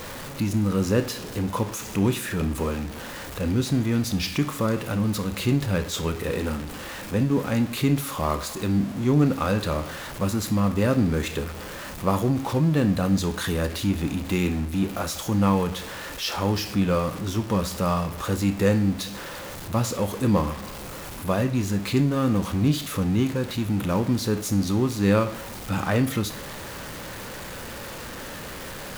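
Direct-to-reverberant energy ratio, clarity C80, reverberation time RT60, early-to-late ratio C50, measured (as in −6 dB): 9.0 dB, 19.0 dB, 0.45 s, 15.0 dB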